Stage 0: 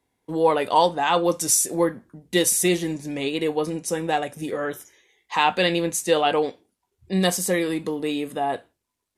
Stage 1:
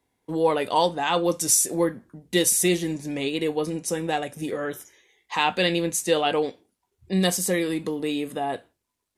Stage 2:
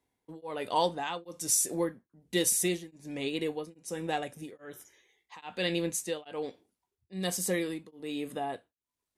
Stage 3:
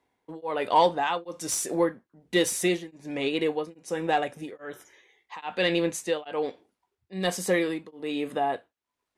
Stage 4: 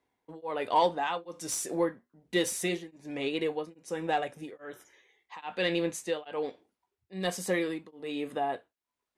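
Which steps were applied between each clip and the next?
dynamic equaliser 950 Hz, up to −4 dB, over −32 dBFS, Q 0.71
tremolo along a rectified sine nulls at 1.2 Hz; level −6 dB
mid-hump overdrive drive 10 dB, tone 1,600 Hz, clips at −12 dBFS; level +6 dB
flanger 0.26 Hz, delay 0.5 ms, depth 6.1 ms, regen −83%

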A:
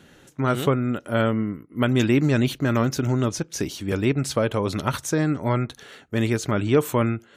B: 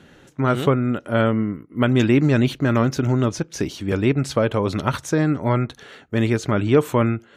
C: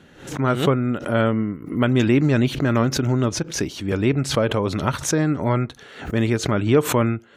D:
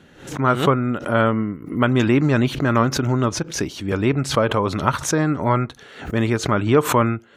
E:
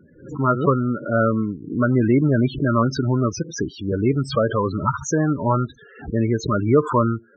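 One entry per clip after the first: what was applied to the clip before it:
low-pass filter 3,900 Hz 6 dB per octave; level +3 dB
background raised ahead of every attack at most 110 dB per second; level −1 dB
dynamic equaliser 1,100 Hz, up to +7 dB, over −36 dBFS, Q 1.4
spectral peaks only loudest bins 16

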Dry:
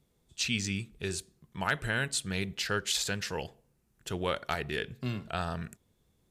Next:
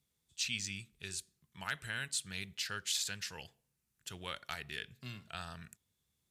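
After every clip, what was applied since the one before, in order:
high-pass filter 63 Hz
de-essing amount 50%
guitar amp tone stack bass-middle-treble 5-5-5
level +3 dB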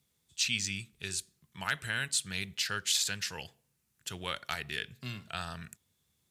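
high-pass filter 60 Hz
level +6 dB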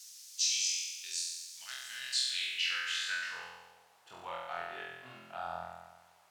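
flutter between parallel walls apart 4 metres, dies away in 1.2 s
background noise blue −41 dBFS
band-pass filter sweep 5,600 Hz → 800 Hz, 0:01.93–0:03.80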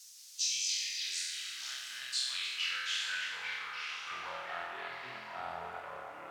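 delay with pitch and tempo change per echo 177 ms, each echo −4 semitones, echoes 3, each echo −6 dB
on a send: tape delay 305 ms, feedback 68%, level −6 dB, low-pass 3,000 Hz
on the sum: level −2.5 dB

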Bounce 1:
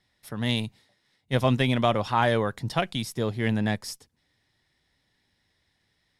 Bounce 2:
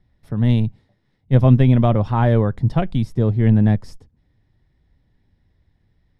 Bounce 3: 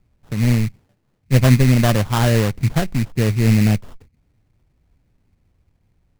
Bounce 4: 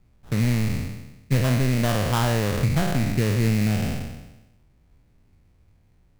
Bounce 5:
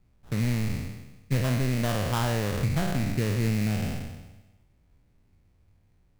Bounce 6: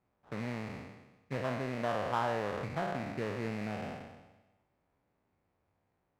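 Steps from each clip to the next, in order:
spectral tilt −4.5 dB per octave
sample-rate reduction 2,300 Hz, jitter 20%
peak hold with a decay on every bin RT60 1.04 s; downward compressor 6 to 1, threshold −18 dBFS, peak gain reduction 11 dB
tuned comb filter 95 Hz, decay 1.4 s, mix 50%; level +1 dB
resonant band-pass 850 Hz, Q 0.9

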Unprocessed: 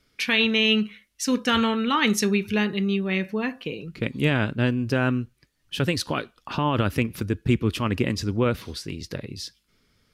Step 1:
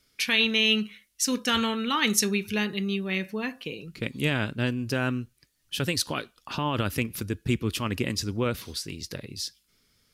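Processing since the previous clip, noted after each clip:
high-shelf EQ 4,000 Hz +12 dB
level −5 dB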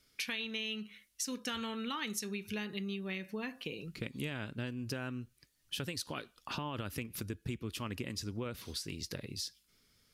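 downward compressor 6 to 1, threshold −33 dBFS, peak gain reduction 14.5 dB
level −3 dB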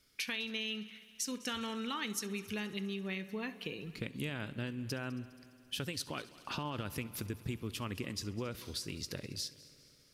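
echo machine with several playback heads 68 ms, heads first and third, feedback 71%, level −21 dB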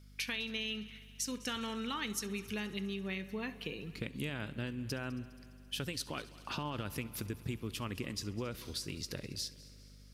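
mains hum 50 Hz, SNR 16 dB

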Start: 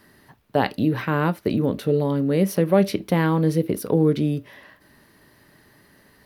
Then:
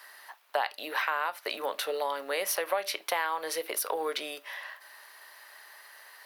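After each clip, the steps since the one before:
high-pass filter 730 Hz 24 dB per octave
downward compressor 5 to 1, threshold −33 dBFS, peak gain reduction 12.5 dB
level +6.5 dB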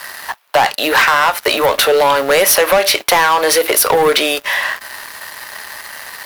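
leveller curve on the samples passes 3
in parallel at −3 dB: hard clipping −27 dBFS, distortion −8 dB
on the sum: level +8.5 dB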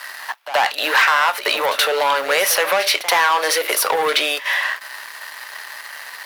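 high-pass filter 1,200 Hz 6 dB per octave
high-shelf EQ 5,100 Hz −8.5 dB
echo ahead of the sound 77 ms −13.5 dB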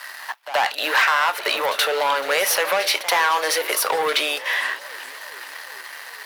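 feedback echo with a swinging delay time 423 ms, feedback 67%, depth 216 cents, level −20 dB
level −3 dB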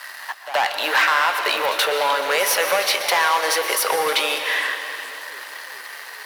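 convolution reverb RT60 2.4 s, pre-delay 108 ms, DRR 7 dB

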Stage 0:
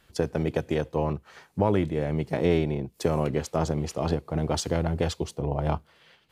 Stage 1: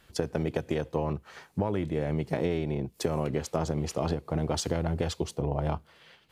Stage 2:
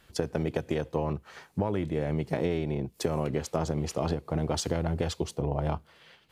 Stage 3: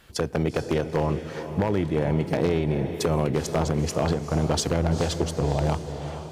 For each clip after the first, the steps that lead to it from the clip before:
downward compressor, threshold −26 dBFS, peak gain reduction 9 dB; level +1.5 dB
no processing that can be heard
feedback delay with all-pass diffusion 453 ms, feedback 48%, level −10 dB; wave folding −19.5 dBFS; level +5.5 dB

